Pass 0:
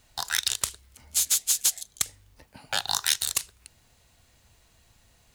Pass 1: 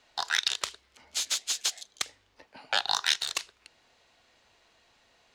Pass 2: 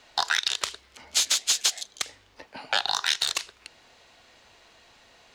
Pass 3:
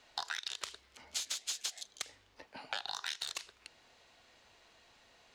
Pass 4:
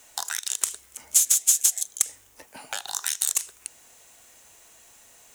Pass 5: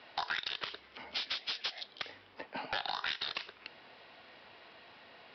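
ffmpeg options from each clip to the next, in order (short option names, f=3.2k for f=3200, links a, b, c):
-filter_complex "[0:a]acrossover=split=270 5600:gain=0.112 1 0.0794[a][b][c];[a][b][c]amix=inputs=3:normalize=0,volume=2dB"
-af "alimiter=limit=-18.5dB:level=0:latency=1:release=125,volume=8.5dB"
-af "acompressor=threshold=-27dB:ratio=5,volume=-8dB"
-af "aexciter=amount=11.2:drive=6:freq=6.6k,volume=5dB"
-af "highpass=130,lowpass=3.8k,aresample=11025,asoftclip=type=tanh:threshold=-31.5dB,aresample=44100,volume=4.5dB"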